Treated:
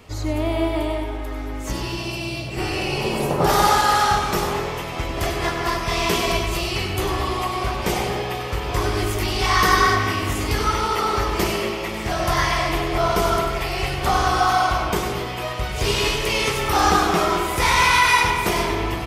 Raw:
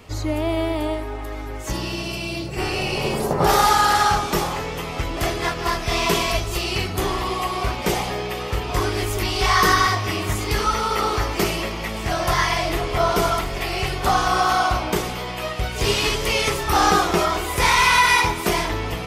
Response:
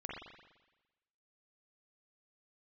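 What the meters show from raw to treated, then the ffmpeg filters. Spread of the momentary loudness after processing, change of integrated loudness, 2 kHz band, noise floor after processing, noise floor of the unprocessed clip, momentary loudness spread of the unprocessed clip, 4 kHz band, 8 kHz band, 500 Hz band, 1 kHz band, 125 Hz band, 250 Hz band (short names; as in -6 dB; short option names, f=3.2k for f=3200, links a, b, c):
11 LU, 0.0 dB, 0.0 dB, -29 dBFS, -30 dBFS, 11 LU, -0.5 dB, -1.0 dB, +0.5 dB, 0.0 dB, +0.5 dB, +0.5 dB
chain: -filter_complex "[0:a]aecho=1:1:111|222|333|444|555:0.15|0.0808|0.0436|0.0236|0.0127,asplit=2[a][b];[1:a]atrim=start_sample=2205,adelay=96[c];[b][c]afir=irnorm=-1:irlink=0,volume=-3.5dB[d];[a][d]amix=inputs=2:normalize=0,volume=-1.5dB"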